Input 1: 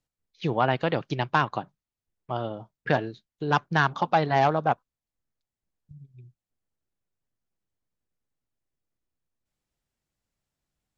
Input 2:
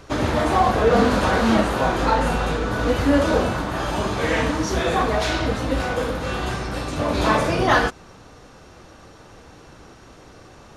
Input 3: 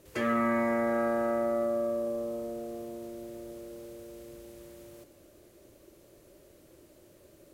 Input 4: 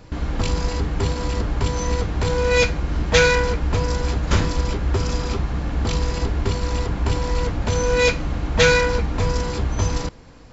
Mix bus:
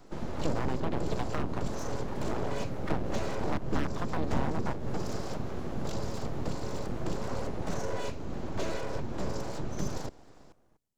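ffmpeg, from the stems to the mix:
-filter_complex "[0:a]volume=0dB[a];[1:a]equalizer=f=4.2k:w=0.32:g=-10.5,aecho=1:1:6.5:0.33,volume=-17.5dB[b];[2:a]adelay=2000,volume=-12.5dB[c];[3:a]lowshelf=f=100:g=-8.5,acrossover=split=190[d][e];[e]acompressor=threshold=-31dB:ratio=2[f];[d][f]amix=inputs=2:normalize=0,equalizer=f=360:w=0.54:g=3,volume=-5dB[g];[a][b][c][g]amix=inputs=4:normalize=0,equalizer=f=2.1k:t=o:w=2.4:g=-9.5,acrossover=split=330[h][i];[i]acompressor=threshold=-32dB:ratio=10[j];[h][j]amix=inputs=2:normalize=0,aeval=exprs='abs(val(0))':c=same"

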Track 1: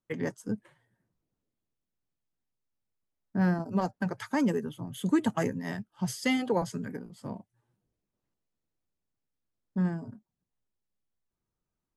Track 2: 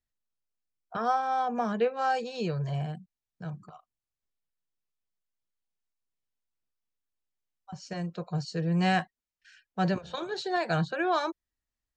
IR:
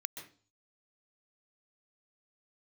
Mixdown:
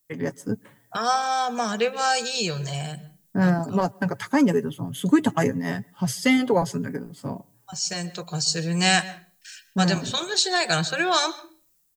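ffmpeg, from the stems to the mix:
-filter_complex "[0:a]aecho=1:1:7.2:0.37,volume=1dB,asplit=2[a][b];[b]volume=-22.5dB[c];[1:a]crystalizer=i=5:c=0,highshelf=f=5.7k:g=10.5,volume=-4.5dB,asplit=2[d][e];[e]volume=-8dB[f];[2:a]atrim=start_sample=2205[g];[c][f]amix=inputs=2:normalize=0[h];[h][g]afir=irnorm=-1:irlink=0[i];[a][d][i]amix=inputs=3:normalize=0,dynaudnorm=f=120:g=5:m=5.5dB"

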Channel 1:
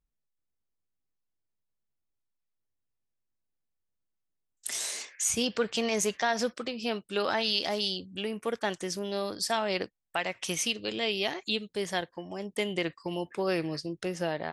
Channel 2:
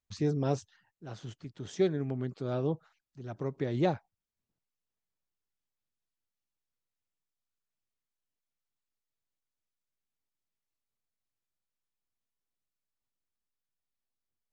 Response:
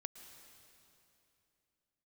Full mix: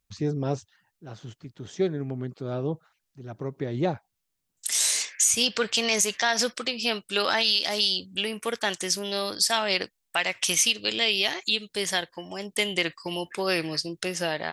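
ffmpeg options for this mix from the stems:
-filter_complex "[0:a]acontrast=61,tiltshelf=f=1.5k:g=-6,volume=0dB[a];[1:a]volume=2dB[b];[a][b]amix=inputs=2:normalize=0,alimiter=limit=-10.5dB:level=0:latency=1:release=162"

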